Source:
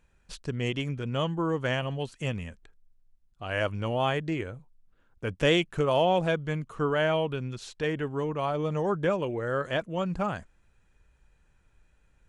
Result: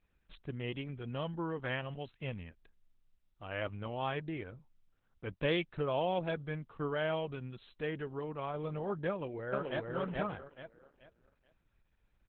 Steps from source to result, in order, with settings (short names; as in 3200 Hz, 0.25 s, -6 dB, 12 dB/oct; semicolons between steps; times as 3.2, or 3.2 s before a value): 1.33–2.17 bell 1800 Hz +3.5 dB 0.77 oct; 5.32–6.94 gate -44 dBFS, range -39 dB; 9.09–9.92 echo throw 0.43 s, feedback 30%, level -1.5 dB; gain -8 dB; Opus 8 kbps 48000 Hz